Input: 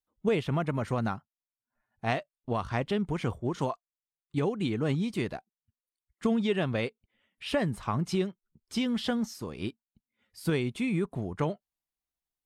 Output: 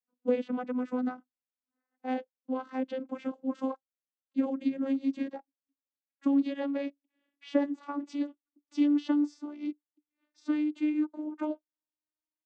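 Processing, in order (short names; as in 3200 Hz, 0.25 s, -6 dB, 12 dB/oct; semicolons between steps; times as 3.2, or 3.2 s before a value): vocoder on a gliding note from B3, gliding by +4 st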